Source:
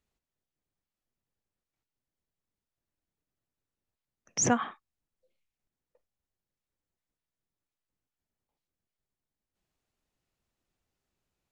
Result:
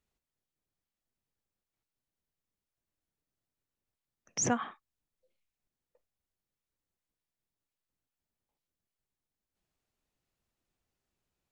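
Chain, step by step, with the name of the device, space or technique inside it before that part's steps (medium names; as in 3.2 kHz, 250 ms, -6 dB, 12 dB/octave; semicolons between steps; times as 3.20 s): parallel compression (in parallel at -7 dB: compression, threshold -35 dBFS, peak gain reduction 15.5 dB); on the sum: trim -5 dB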